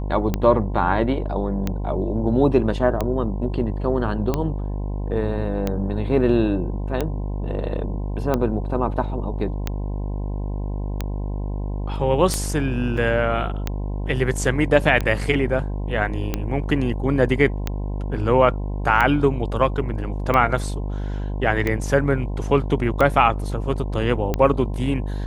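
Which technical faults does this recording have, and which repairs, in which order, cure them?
mains buzz 50 Hz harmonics 21 −26 dBFS
scratch tick 45 rpm −9 dBFS
0:12.97: drop-out 4.7 ms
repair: click removal
hum removal 50 Hz, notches 21
repair the gap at 0:12.97, 4.7 ms

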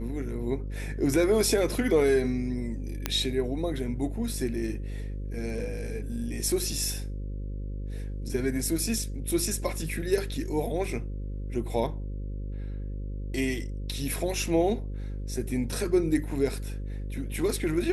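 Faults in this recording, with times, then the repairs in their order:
mains buzz 50 Hz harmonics 11 −34 dBFS
0:03.06: click −10 dBFS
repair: click removal
hum removal 50 Hz, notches 11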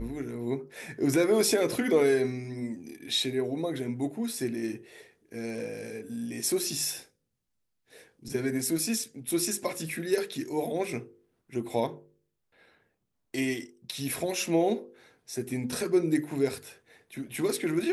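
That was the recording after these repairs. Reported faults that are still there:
none of them is left

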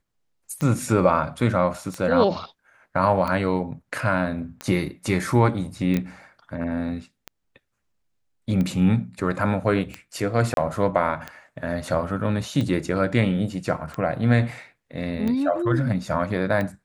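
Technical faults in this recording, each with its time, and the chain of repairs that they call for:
scratch tick 45 rpm −16 dBFS
0:05.97: click −12 dBFS
0:10.54–0:10.57: drop-out 32 ms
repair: click removal
repair the gap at 0:10.54, 32 ms

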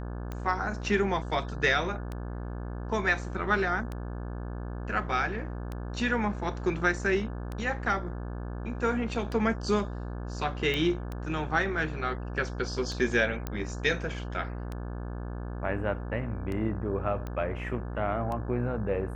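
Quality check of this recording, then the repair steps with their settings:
mains buzz 60 Hz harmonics 29 −36 dBFS
scratch tick 33 1/3 rpm −23 dBFS
0:10.74: click −17 dBFS
0:13.47: click −18 dBFS
0:17.27: click −24 dBFS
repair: click removal
hum removal 60 Hz, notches 29

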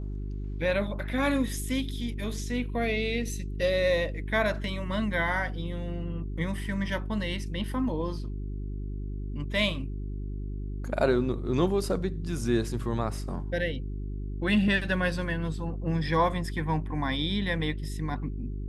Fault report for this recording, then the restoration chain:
mains hum 50 Hz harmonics 8 −34 dBFS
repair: hum removal 50 Hz, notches 8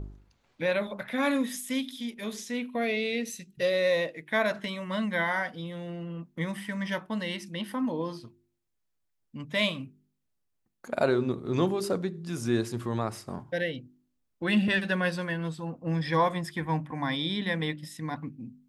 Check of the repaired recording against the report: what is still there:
none of them is left

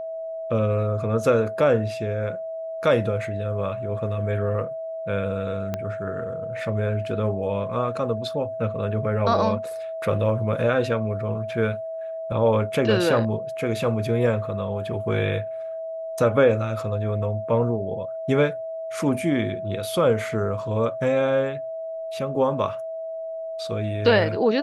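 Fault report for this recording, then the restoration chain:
whistle 650 Hz −29 dBFS
0:05.74: click −14 dBFS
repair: click removal
notch filter 650 Hz, Q 30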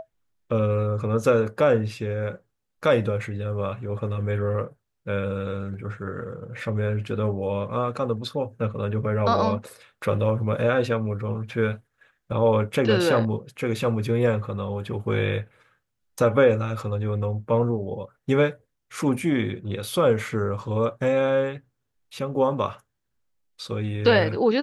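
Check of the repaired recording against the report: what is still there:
0:05.74: click

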